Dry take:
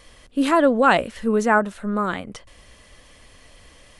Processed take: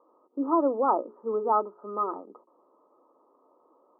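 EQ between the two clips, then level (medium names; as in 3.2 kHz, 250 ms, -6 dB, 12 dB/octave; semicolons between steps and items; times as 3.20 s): high-pass 330 Hz 24 dB/octave; rippled Chebyshev low-pass 1.3 kHz, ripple 9 dB; hum notches 60/120/180/240/300/360/420 Hz; 0.0 dB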